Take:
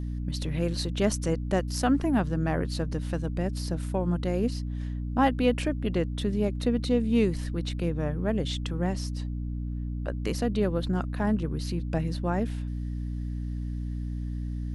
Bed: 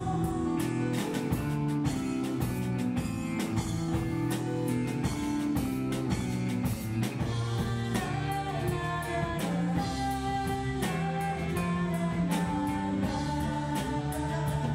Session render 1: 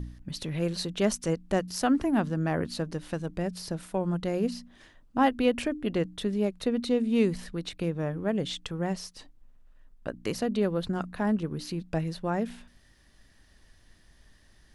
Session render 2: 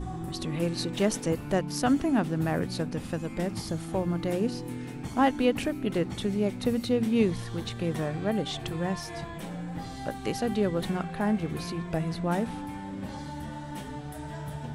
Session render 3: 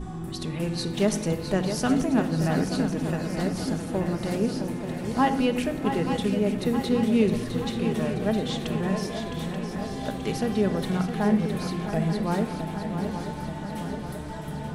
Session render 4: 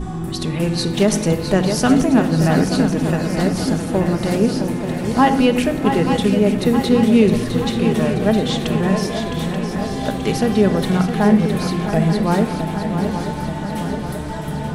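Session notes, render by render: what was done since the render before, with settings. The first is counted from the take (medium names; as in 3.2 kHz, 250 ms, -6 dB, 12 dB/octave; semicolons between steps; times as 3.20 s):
de-hum 60 Hz, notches 5
add bed -7 dB
shuffle delay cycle 882 ms, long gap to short 3:1, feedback 61%, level -8.5 dB; simulated room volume 2800 m³, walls furnished, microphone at 1.4 m
trim +9 dB; peak limiter -3 dBFS, peak gain reduction 3 dB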